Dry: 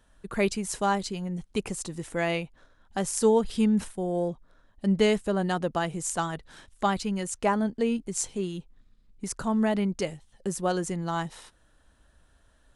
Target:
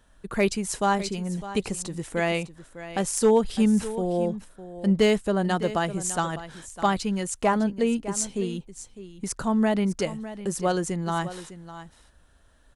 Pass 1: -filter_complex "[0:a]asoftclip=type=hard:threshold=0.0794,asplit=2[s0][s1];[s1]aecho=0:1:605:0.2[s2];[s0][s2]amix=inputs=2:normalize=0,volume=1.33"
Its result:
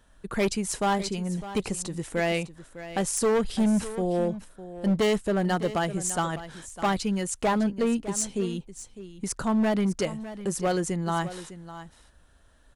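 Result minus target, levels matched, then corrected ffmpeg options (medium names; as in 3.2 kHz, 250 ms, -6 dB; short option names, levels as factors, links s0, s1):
hard clipper: distortion +17 dB
-filter_complex "[0:a]asoftclip=type=hard:threshold=0.188,asplit=2[s0][s1];[s1]aecho=0:1:605:0.2[s2];[s0][s2]amix=inputs=2:normalize=0,volume=1.33"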